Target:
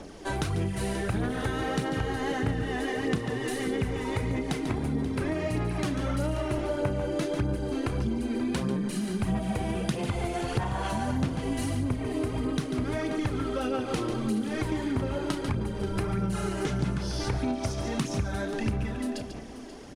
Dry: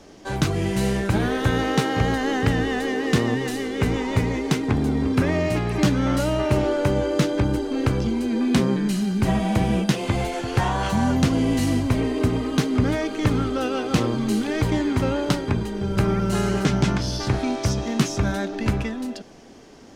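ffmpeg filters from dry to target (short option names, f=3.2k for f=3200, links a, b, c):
-filter_complex "[0:a]aphaser=in_gain=1:out_gain=1:delay=3.1:decay=0.51:speed=1.6:type=sinusoidal,highshelf=f=6.1k:g=-7,asplit=2[a][b];[b]aecho=0:1:32.07|142.9:0.251|0.316[c];[a][c]amix=inputs=2:normalize=0,acompressor=threshold=-28dB:ratio=4,equalizer=f=9.9k:t=o:w=0.43:g=12,asplit=2[d][e];[e]aecho=0:1:533:0.188[f];[d][f]amix=inputs=2:normalize=0"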